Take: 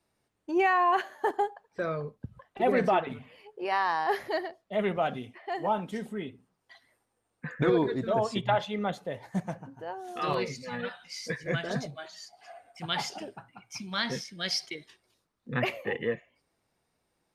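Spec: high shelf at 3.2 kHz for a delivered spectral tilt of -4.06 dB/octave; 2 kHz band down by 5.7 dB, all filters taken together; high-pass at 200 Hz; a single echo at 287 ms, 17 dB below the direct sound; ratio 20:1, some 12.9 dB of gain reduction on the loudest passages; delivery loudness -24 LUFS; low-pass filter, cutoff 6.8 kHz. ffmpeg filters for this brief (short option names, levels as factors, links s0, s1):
-af "highpass=200,lowpass=6800,equalizer=f=2000:t=o:g=-8.5,highshelf=f=3200:g=4.5,acompressor=threshold=0.02:ratio=20,aecho=1:1:287:0.141,volume=6.68"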